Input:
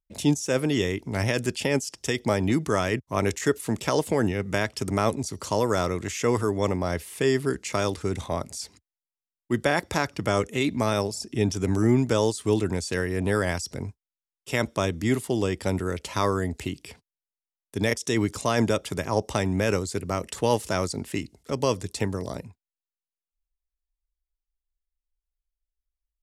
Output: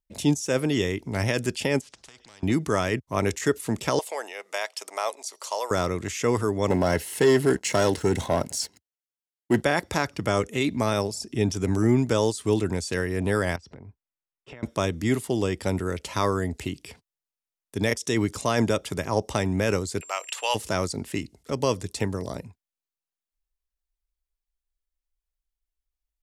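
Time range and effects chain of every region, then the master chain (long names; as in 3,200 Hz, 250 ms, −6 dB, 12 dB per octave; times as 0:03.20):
0:01.81–0:02.43: downward compressor 2 to 1, threshold −46 dBFS + high-frequency loss of the air 140 metres + every bin compressed towards the loudest bin 4 to 1
0:03.99–0:05.71: high-pass filter 600 Hz 24 dB per octave + parametric band 1,500 Hz −5 dB 0.76 octaves
0:06.70–0:09.62: leveller curve on the samples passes 2 + notch comb filter 1,200 Hz
0:13.56–0:14.63: low-pass filter 2,200 Hz + downward compressor 12 to 1, threshold −39 dBFS
0:20.00–0:20.54: high-pass filter 650 Hz 24 dB per octave + parametric band 2,700 Hz +12 dB 0.52 octaves + steady tone 7,400 Hz −44 dBFS
whole clip: no processing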